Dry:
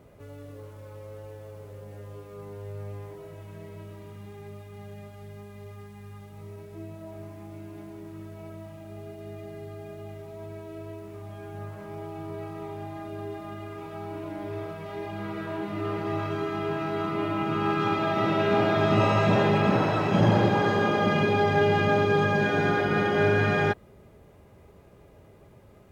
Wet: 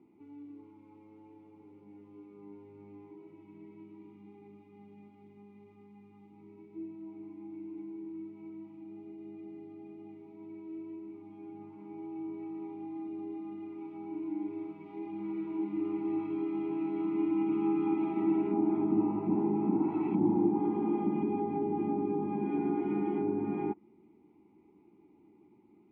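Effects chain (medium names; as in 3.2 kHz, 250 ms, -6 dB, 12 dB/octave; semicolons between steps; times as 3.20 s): low-pass that closes with the level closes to 940 Hz, closed at -18 dBFS; vowel filter u; small resonant body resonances 210/350/1400 Hz, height 10 dB, ringing for 45 ms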